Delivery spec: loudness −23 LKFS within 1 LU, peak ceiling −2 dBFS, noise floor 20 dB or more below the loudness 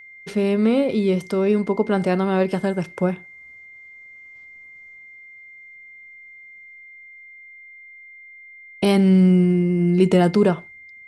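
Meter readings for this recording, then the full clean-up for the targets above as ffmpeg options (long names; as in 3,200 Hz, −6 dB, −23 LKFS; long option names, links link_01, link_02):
interfering tone 2,100 Hz; level of the tone −41 dBFS; integrated loudness −19.0 LKFS; sample peak −4.5 dBFS; target loudness −23.0 LKFS
→ -af "bandreject=frequency=2100:width=30"
-af "volume=-4dB"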